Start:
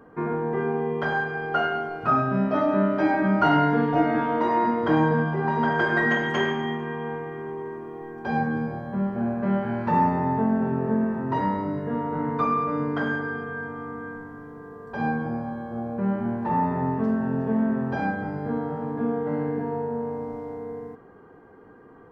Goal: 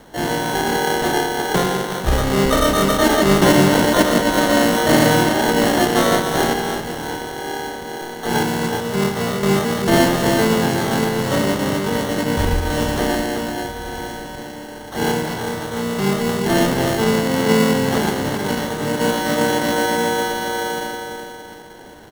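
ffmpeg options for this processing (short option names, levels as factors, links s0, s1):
-filter_complex "[0:a]asplit=2[s0][s1];[s1]adelay=369,lowpass=f=860:p=1,volume=0.531,asplit=2[s2][s3];[s3]adelay=369,lowpass=f=860:p=1,volume=0.49,asplit=2[s4][s5];[s5]adelay=369,lowpass=f=860:p=1,volume=0.49,asplit=2[s6][s7];[s7]adelay=369,lowpass=f=860:p=1,volume=0.49,asplit=2[s8][s9];[s9]adelay=369,lowpass=f=860:p=1,volume=0.49,asplit=2[s10][s11];[s11]adelay=369,lowpass=f=860:p=1,volume=0.49[s12];[s2][s4][s6][s8][s10][s12]amix=inputs=6:normalize=0[s13];[s0][s13]amix=inputs=2:normalize=0,acrusher=samples=36:mix=1:aa=0.000001,asplit=2[s14][s15];[s15]adelay=320,highpass=300,lowpass=3400,asoftclip=type=hard:threshold=0.158,volume=0.141[s16];[s14][s16]amix=inputs=2:normalize=0,asplit=3[s17][s18][s19];[s18]asetrate=33038,aresample=44100,atempo=1.33484,volume=0.501[s20];[s19]asetrate=88200,aresample=44100,atempo=0.5,volume=0.891[s21];[s17][s20][s21]amix=inputs=3:normalize=0,volume=1.41"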